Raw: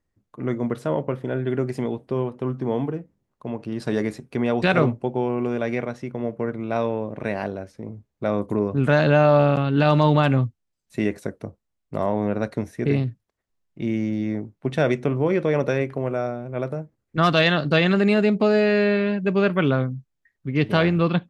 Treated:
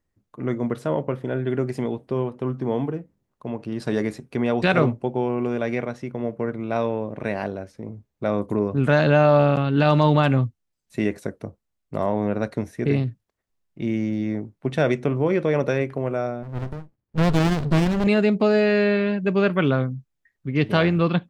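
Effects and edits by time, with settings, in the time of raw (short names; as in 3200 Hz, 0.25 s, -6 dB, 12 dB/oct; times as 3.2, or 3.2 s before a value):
16.43–18.07 running maximum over 65 samples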